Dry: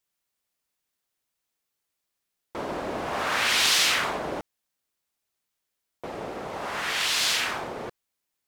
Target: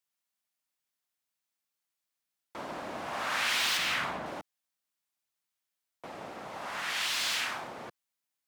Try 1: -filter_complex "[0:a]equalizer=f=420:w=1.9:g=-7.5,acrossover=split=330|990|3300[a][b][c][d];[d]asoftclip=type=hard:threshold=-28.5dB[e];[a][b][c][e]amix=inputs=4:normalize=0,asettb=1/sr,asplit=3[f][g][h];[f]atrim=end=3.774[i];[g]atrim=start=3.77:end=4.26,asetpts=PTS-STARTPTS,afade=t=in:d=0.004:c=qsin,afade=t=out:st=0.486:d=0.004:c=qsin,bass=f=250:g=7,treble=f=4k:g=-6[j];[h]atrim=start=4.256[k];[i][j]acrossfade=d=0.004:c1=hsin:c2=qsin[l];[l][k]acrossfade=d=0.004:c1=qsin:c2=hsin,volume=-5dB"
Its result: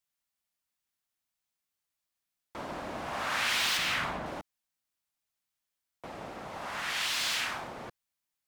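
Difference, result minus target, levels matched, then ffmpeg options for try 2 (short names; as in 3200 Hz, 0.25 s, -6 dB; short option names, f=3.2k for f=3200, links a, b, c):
125 Hz band +4.0 dB
-filter_complex "[0:a]highpass=f=170:p=1,equalizer=f=420:w=1.9:g=-7.5,acrossover=split=330|990|3300[a][b][c][d];[d]asoftclip=type=hard:threshold=-28.5dB[e];[a][b][c][e]amix=inputs=4:normalize=0,asettb=1/sr,asplit=3[f][g][h];[f]atrim=end=3.774[i];[g]atrim=start=3.77:end=4.26,asetpts=PTS-STARTPTS,afade=t=in:d=0.004:c=qsin,afade=t=out:st=0.486:d=0.004:c=qsin,bass=f=250:g=7,treble=f=4k:g=-6[j];[h]atrim=start=4.256[k];[i][j]acrossfade=d=0.004:c1=hsin:c2=qsin[l];[l][k]acrossfade=d=0.004:c1=qsin:c2=hsin,volume=-5dB"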